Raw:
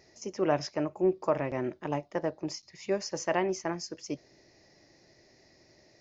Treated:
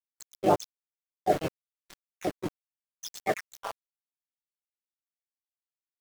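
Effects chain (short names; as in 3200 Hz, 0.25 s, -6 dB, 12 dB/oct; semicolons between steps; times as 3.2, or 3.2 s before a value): random spectral dropouts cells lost 82%; in parallel at +2 dB: compressor 4:1, threshold -50 dBFS, peak gain reduction 22.5 dB; on the sum: sample gate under -34 dBFS; harmoniser -7 st -5 dB, +3 st 0 dB, +4 st -12 dB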